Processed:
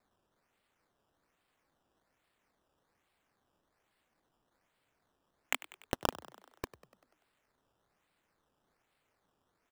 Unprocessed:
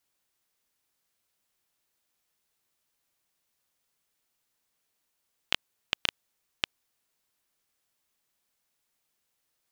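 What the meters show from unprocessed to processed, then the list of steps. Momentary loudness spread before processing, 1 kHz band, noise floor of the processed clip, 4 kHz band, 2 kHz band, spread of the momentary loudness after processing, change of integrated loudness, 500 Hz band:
5 LU, +3.5 dB, -80 dBFS, -13.0 dB, -6.5 dB, 14 LU, -6.0 dB, +6.5 dB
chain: elliptic high-pass 250 Hz; bell 3400 Hz -5.5 dB; flange 1.8 Hz, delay 0.8 ms, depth 6.6 ms, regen -35%; decimation with a swept rate 14×, swing 100% 1.2 Hz; soft clip -17 dBFS, distortion -17 dB; on a send: frequency-shifting echo 97 ms, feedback 60%, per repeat +59 Hz, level -17.5 dB; on the sum: gain +5 dB

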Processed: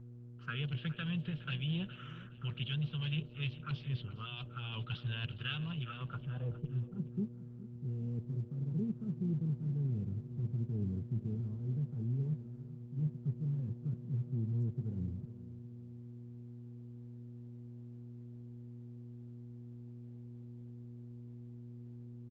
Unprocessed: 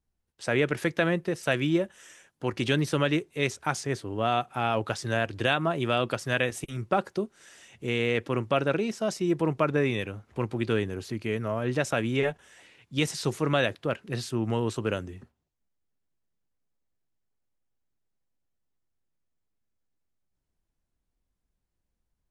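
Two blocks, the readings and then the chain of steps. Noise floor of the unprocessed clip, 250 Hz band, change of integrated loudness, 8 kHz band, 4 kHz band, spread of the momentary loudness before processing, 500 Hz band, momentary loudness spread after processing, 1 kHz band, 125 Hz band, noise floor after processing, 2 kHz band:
-81 dBFS, -10.0 dB, -11.5 dB, under -35 dB, -10.5 dB, 8 LU, -24.5 dB, 14 LU, -22.5 dB, -2.0 dB, -51 dBFS, -17.5 dB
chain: EQ curve 100 Hz 0 dB, 150 Hz +9 dB, 300 Hz -21 dB, 450 Hz -12 dB, 630 Hz -25 dB, 1300 Hz +13 dB, 2000 Hz -18 dB, 3000 Hz +2 dB, 7300 Hz -17 dB, 14000 Hz -27 dB; reverse; compressor 5:1, threshold -35 dBFS, peak gain reduction 17.5 dB; reverse; hard clip -28 dBFS, distortion -28 dB; buzz 120 Hz, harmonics 5, -51 dBFS -7 dB/oct; envelope phaser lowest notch 530 Hz, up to 1300 Hz, full sweep at -33.5 dBFS; added harmonics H 3 -44 dB, 5 -29 dB, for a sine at -26.5 dBFS; low-pass sweep 3000 Hz -> 300 Hz, 5.76–6.8; on a send: feedback echo 0.415 s, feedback 33%, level -15.5 dB; on the sum: Opus 12 kbps 48000 Hz

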